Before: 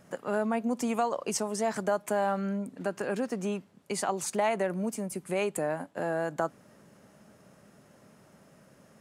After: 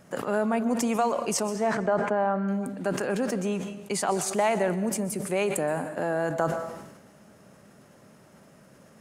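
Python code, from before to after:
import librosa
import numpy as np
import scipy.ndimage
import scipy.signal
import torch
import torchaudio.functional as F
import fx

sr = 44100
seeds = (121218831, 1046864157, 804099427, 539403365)

y = fx.lowpass(x, sr, hz=fx.line((1.52, 3100.0), (2.47, 1500.0)), slope=12, at=(1.52, 2.47), fade=0.02)
y = fx.rev_plate(y, sr, seeds[0], rt60_s=0.85, hf_ratio=1.0, predelay_ms=110, drr_db=14.0)
y = fx.sustainer(y, sr, db_per_s=52.0)
y = y * 10.0 ** (3.0 / 20.0)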